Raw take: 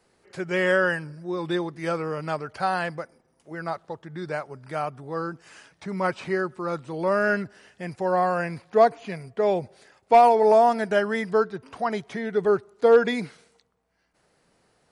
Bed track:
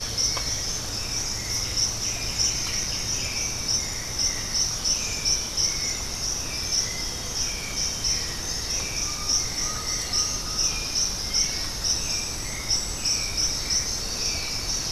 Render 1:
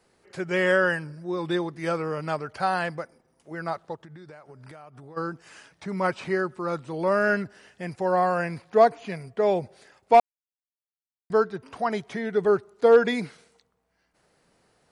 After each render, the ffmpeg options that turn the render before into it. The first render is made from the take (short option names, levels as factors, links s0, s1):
-filter_complex "[0:a]asplit=3[s0][s1][s2];[s0]afade=t=out:st=3.95:d=0.02[s3];[s1]acompressor=threshold=0.00891:ratio=16:attack=3.2:release=140:knee=1:detection=peak,afade=t=in:st=3.95:d=0.02,afade=t=out:st=5.16:d=0.02[s4];[s2]afade=t=in:st=5.16:d=0.02[s5];[s3][s4][s5]amix=inputs=3:normalize=0,asplit=3[s6][s7][s8];[s6]atrim=end=10.2,asetpts=PTS-STARTPTS,afade=t=out:st=10.196:d=0.004:c=hsin[s9];[s7]atrim=start=10.2:end=11.3,asetpts=PTS-STARTPTS,volume=0[s10];[s8]atrim=start=11.3,asetpts=PTS-STARTPTS,afade=t=in:d=0.004:c=hsin[s11];[s9][s10][s11]concat=n=3:v=0:a=1"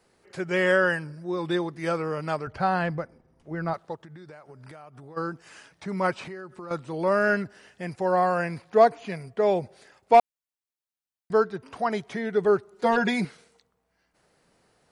-filter_complex "[0:a]asettb=1/sr,asplit=3[s0][s1][s2];[s0]atrim=end=2.474[s3];[s1]atrim=start=2.47:end=3.74,asetpts=PTS-STARTPTS,afade=t=in:d=0.004:c=qsin,afade=t=out:st=1.266:d=0.004:c=qsin,aemphasis=mode=reproduction:type=bsi[s4];[s2]atrim=start=3.736[s5];[s3][s4]acrossfade=d=0.004:c1=hsin:c2=qsin[s6];[s6][s5]acrossfade=d=0.004:c1=qsin:c2=hsin,asettb=1/sr,asplit=3[s7][s8][s9];[s7]atrim=end=6.224[s10];[s8]atrim=start=6.22:end=6.71,asetpts=PTS-STARTPTS,afade=t=in:d=0.004:c=qsin,afade=t=out:st=0.486:d=0.004:c=qsin,acompressor=threshold=0.0158:ratio=6:attack=3.2:release=140:knee=1:detection=peak[s11];[s9]atrim=start=6.706[s12];[s10][s11]acrossfade=d=0.004:c1=hsin:c2=qsin[s13];[s13][s12]acrossfade=d=0.004:c1=qsin:c2=hsin,asettb=1/sr,asplit=3[s14][s15][s16];[s14]atrim=end=12.724[s17];[s15]atrim=start=12.72:end=13.25,asetpts=PTS-STARTPTS,afade=t=in:d=0.004:c=qsin,afade=t=out:st=0.526:d=0.004:c=qsin,aecho=1:1:5.4:0.95,atrim=end_sample=23373[s18];[s16]atrim=start=13.246[s19];[s17][s18]acrossfade=d=0.004:c1=hsin:c2=qsin[s20];[s20][s19]acrossfade=d=0.004:c1=qsin:c2=hsin"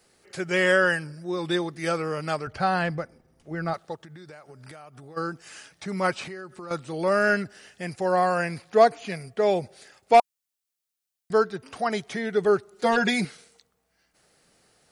-af "highshelf=f=2900:g=9,bandreject=f=980:w=9.7"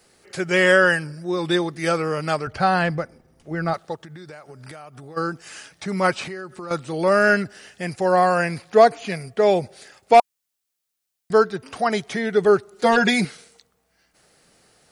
-af "volume=1.78,alimiter=limit=0.708:level=0:latency=1"